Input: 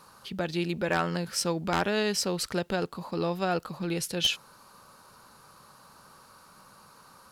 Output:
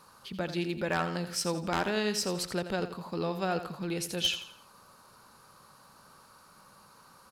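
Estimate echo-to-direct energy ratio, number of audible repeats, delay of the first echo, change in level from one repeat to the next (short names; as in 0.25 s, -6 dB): -10.5 dB, 3, 85 ms, -9.0 dB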